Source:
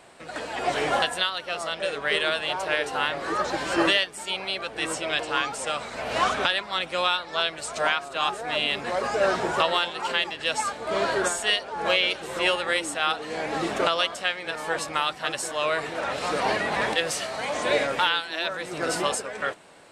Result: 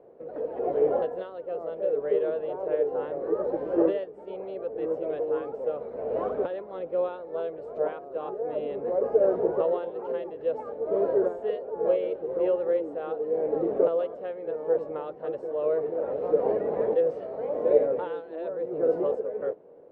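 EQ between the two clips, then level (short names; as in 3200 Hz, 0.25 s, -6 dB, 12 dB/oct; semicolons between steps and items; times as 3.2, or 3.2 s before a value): synth low-pass 470 Hz, resonance Q 5.2; tilt +1.5 dB/oct; -3.0 dB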